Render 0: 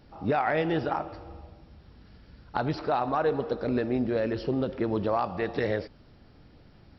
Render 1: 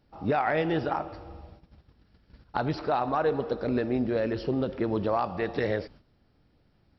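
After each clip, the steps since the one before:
noise gate −49 dBFS, range −11 dB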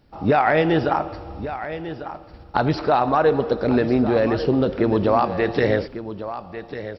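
single-tap delay 1,147 ms −12 dB
level +8.5 dB

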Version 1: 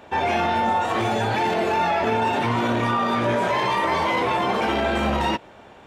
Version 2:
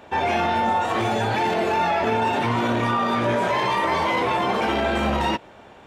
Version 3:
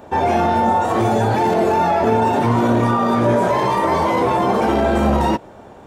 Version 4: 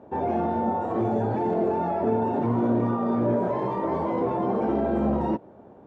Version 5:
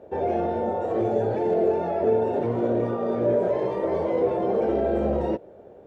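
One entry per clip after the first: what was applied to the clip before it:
no processing that can be heard
parametric band 2,700 Hz −12.5 dB 2 octaves; level +8 dB
resonant band-pass 270 Hz, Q 0.6; level −5.5 dB
octave-band graphic EQ 125/250/500/1,000 Hz −6/−10/+7/−12 dB; level +4 dB

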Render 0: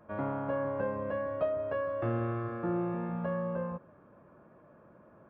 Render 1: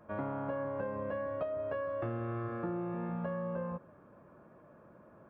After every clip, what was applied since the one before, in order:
downward compressor, threshold −33 dBFS, peak gain reduction 7.5 dB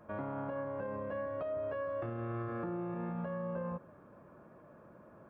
brickwall limiter −32 dBFS, peak gain reduction 6.5 dB
level +1 dB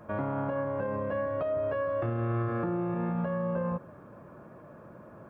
parametric band 120 Hz +3.5 dB 0.77 octaves
level +7 dB

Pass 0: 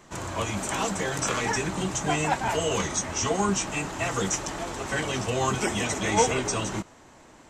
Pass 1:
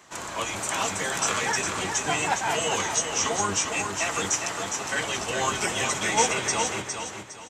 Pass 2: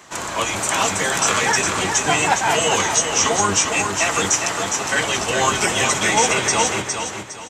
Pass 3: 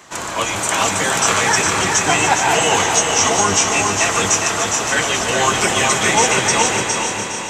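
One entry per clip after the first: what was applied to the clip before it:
sub-octave generator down 1 octave, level +4 dB; high-pass filter 900 Hz 6 dB per octave; repeating echo 409 ms, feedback 32%, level −6 dB; level +3 dB
boost into a limiter +12 dB; level −4 dB
echo machine with several playback heads 146 ms, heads all three, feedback 63%, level −12.5 dB; level +1.5 dB

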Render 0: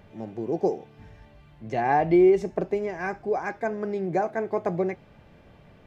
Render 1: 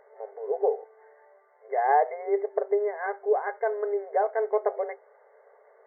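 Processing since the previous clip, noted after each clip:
brick-wall band-pass 390–2,200 Hz
tilt shelving filter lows +4.5 dB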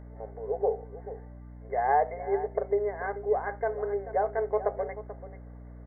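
single-tap delay 436 ms −14 dB
mains hum 60 Hz, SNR 14 dB
level −2.5 dB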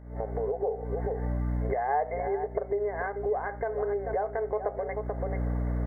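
camcorder AGC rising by 78 dB per second
level −3.5 dB

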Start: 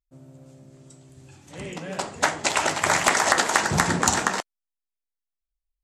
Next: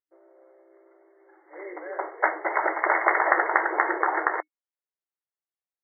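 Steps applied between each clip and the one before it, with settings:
brick-wall band-pass 310–2,200 Hz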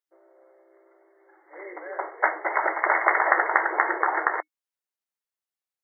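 low-shelf EQ 310 Hz −10 dB
level +1.5 dB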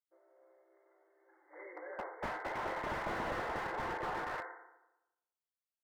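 tuned comb filter 520 Hz, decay 0.39 s, mix 70%
feedback delay network reverb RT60 0.94 s, low-frequency decay 1.1×, high-frequency decay 0.55×, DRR 6 dB
slew-rate limiting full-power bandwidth 18 Hz
level −1 dB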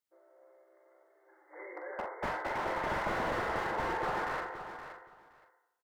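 double-tracking delay 44 ms −8 dB
on a send: repeating echo 520 ms, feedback 17%, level −10.5 dB
on the sum: level +3.5 dB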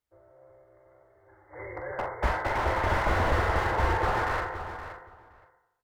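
sub-octave generator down 2 octaves, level −5 dB
low shelf with overshoot 110 Hz +9 dB, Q 1.5
one half of a high-frequency compander decoder only
level +6.5 dB

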